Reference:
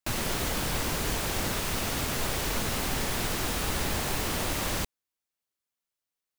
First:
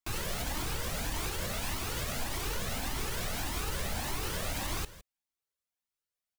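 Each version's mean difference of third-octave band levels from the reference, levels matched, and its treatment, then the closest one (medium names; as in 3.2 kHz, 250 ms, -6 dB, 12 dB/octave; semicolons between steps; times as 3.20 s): 1.5 dB: peak limiter -21 dBFS, peak gain reduction 5 dB; delay 161 ms -16.5 dB; Shepard-style flanger rising 1.7 Hz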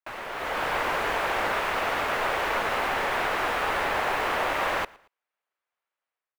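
9.5 dB: three-band isolator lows -22 dB, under 470 Hz, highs -23 dB, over 2.5 kHz; level rider gain up to 10.5 dB; feedback delay 114 ms, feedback 37%, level -24 dB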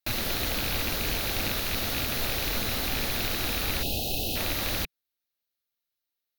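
3.5 dB: rattle on loud lows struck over -31 dBFS, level -21 dBFS; time-frequency box 3.83–4.36 s, 830–2500 Hz -28 dB; graphic EQ with 31 bands 160 Hz -8 dB, 400 Hz -3 dB, 1 kHz -7 dB, 4 kHz +7 dB, 8 kHz -11 dB, 16 kHz +10 dB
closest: first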